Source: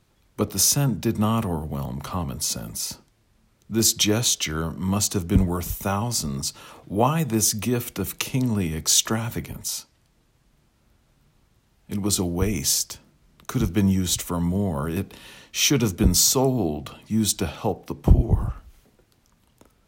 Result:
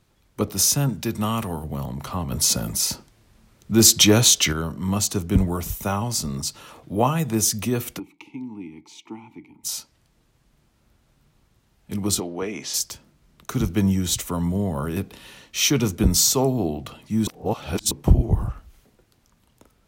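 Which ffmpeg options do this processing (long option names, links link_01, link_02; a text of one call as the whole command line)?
ffmpeg -i in.wav -filter_complex "[0:a]asettb=1/sr,asplit=3[link_01][link_02][link_03];[link_01]atrim=end=0.894[link_04];[link_02]atrim=start=0.89:end=1.64,asetpts=PTS-STARTPTS,afade=type=in:duration=0.004:curve=qsin,afade=type=out:start_time=0.746:duration=0.004:curve=qsin,tiltshelf=frequency=1100:gain=-3.5[link_05];[link_03]atrim=start=1.636[link_06];[link_04][link_05]acrossfade=duration=0.004:curve1=hsin:curve2=qsin[link_07];[link_07][link_06]acrossfade=duration=0.004:curve1=qsin:curve2=hsin,asettb=1/sr,asplit=3[link_08][link_09][link_10];[link_08]atrim=end=2.314[link_11];[link_09]atrim=start=2.31:end=4.53,asetpts=PTS-STARTPTS,afade=type=in:duration=0.004:curve=qsin,afade=type=out:start_time=2.216:duration=0.004:curve=qsin,acontrast=67[link_12];[link_10]atrim=start=4.526[link_13];[link_11][link_12]acrossfade=duration=0.004:curve1=hsin:curve2=qsin[link_14];[link_14][link_13]acrossfade=duration=0.004:curve1=qsin:curve2=hsin,asplit=3[link_15][link_16][link_17];[link_15]afade=type=out:start_time=7.98:duration=0.02[link_18];[link_16]asplit=3[link_19][link_20][link_21];[link_19]bandpass=frequency=300:width_type=q:width=8,volume=0dB[link_22];[link_20]bandpass=frequency=870:width_type=q:width=8,volume=-6dB[link_23];[link_21]bandpass=frequency=2240:width_type=q:width=8,volume=-9dB[link_24];[link_22][link_23][link_24]amix=inputs=3:normalize=0,afade=type=in:start_time=7.98:duration=0.02,afade=type=out:start_time=9.63:duration=0.02[link_25];[link_17]afade=type=in:start_time=9.63:duration=0.02[link_26];[link_18][link_25][link_26]amix=inputs=3:normalize=0,asplit=3[link_27][link_28][link_29];[link_27]afade=type=out:start_time=12.19:duration=0.02[link_30];[link_28]highpass=320,lowpass=3700,afade=type=in:start_time=12.19:duration=0.02,afade=type=out:start_time=12.73:duration=0.02[link_31];[link_29]afade=type=in:start_time=12.73:duration=0.02[link_32];[link_30][link_31][link_32]amix=inputs=3:normalize=0,asplit=3[link_33][link_34][link_35];[link_33]atrim=end=17.272[link_36];[link_34]atrim=start=17.268:end=17.912,asetpts=PTS-STARTPTS,areverse[link_37];[link_35]atrim=start=17.908[link_38];[link_36][link_37]acrossfade=duration=0.004:curve1=hsin:curve2=hsin[link_39];[link_39][link_38]acrossfade=duration=0.004:curve1=hsin:curve2=hsin" out.wav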